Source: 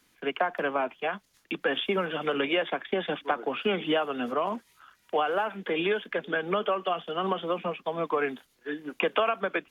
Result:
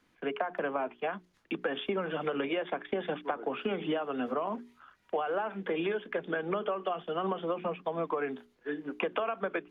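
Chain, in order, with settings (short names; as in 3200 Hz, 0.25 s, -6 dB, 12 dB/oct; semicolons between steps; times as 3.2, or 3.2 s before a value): LPF 1400 Hz 6 dB/oct; notches 60/120/180/240/300/360/420 Hz; compressor, threshold -29 dBFS, peak gain reduction 7.5 dB; gain +1 dB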